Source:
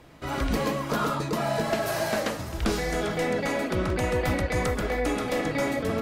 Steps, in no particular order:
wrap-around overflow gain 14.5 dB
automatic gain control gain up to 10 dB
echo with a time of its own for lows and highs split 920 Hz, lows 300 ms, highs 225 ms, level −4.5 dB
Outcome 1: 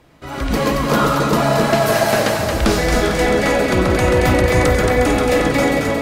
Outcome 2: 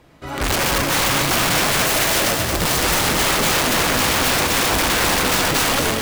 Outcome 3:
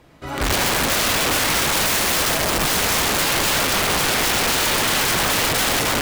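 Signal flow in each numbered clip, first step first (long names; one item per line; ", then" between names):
wrap-around overflow, then automatic gain control, then echo with a time of its own for lows and highs
automatic gain control, then wrap-around overflow, then echo with a time of its own for lows and highs
automatic gain control, then echo with a time of its own for lows and highs, then wrap-around overflow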